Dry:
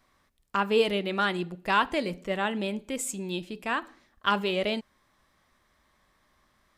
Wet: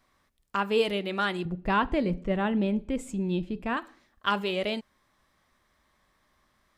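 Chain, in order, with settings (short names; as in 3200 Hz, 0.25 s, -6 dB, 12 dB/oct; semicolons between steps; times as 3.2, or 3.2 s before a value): 1.45–3.77 RIAA curve playback; gain -1.5 dB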